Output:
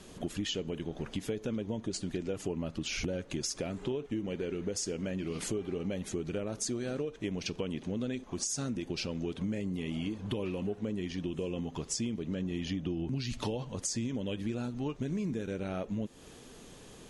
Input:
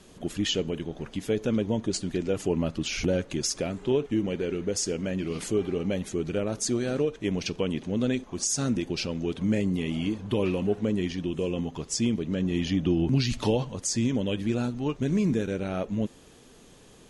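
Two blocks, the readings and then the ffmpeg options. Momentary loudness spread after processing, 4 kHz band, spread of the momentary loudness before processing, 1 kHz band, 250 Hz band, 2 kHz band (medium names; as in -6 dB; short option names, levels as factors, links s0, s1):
3 LU, -6.5 dB, 5 LU, -7.0 dB, -8.0 dB, -6.5 dB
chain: -af "acompressor=threshold=0.02:ratio=5,volume=1.19"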